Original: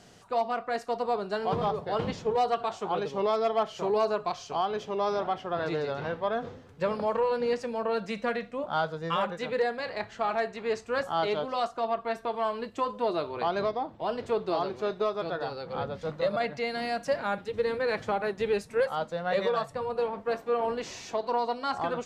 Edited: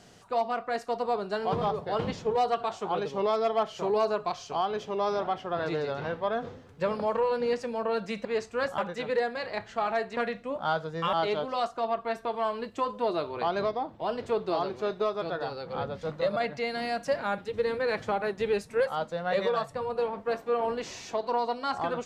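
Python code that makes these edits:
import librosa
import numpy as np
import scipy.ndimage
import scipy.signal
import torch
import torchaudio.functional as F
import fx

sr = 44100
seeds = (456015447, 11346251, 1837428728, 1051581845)

y = fx.edit(x, sr, fx.swap(start_s=8.25, length_s=0.96, other_s=10.6, other_length_s=0.53), tone=tone)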